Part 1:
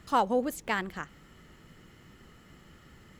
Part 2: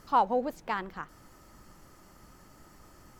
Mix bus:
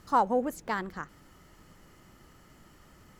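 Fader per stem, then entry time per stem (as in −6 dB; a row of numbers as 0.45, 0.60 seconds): −5.0, −4.0 decibels; 0.00, 0.00 seconds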